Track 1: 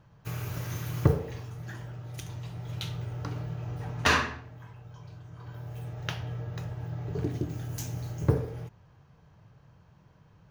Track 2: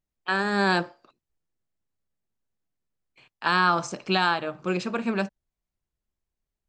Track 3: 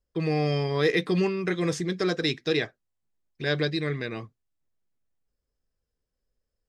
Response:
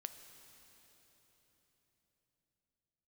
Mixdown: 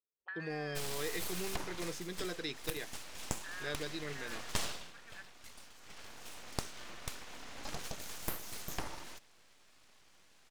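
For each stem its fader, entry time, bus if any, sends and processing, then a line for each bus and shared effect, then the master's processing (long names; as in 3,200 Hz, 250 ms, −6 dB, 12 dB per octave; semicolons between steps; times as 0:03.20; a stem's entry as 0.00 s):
+2.5 dB, 0.50 s, no send, meter weighting curve ITU-R 468; full-wave rectification
−2.5 dB, 0.00 s, no send, downward compressor 2.5 to 1, threshold −38 dBFS, peak gain reduction 14.5 dB; envelope filter 430–1,800 Hz, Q 7, up, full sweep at −39.5 dBFS
−12.0 dB, 0.20 s, no send, high-pass filter 260 Hz 6 dB per octave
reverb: not used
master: downward compressor 6 to 1, threshold −33 dBFS, peak gain reduction 20 dB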